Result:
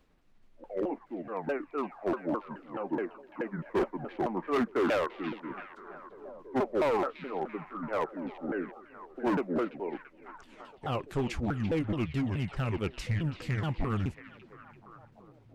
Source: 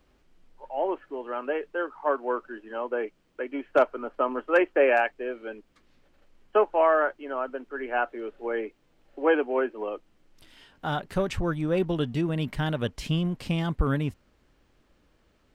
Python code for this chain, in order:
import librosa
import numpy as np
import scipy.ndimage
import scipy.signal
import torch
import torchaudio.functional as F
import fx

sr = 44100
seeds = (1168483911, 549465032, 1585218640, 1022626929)

y = fx.pitch_ramps(x, sr, semitones=-10.0, every_ms=213)
y = np.clip(10.0 ** (21.5 / 20.0) * y, -1.0, 1.0) / 10.0 ** (21.5 / 20.0)
y = fx.echo_stepped(y, sr, ms=338, hz=3000.0, octaves=-0.7, feedback_pct=70, wet_db=-7.5)
y = F.gain(torch.from_numpy(y), -2.5).numpy()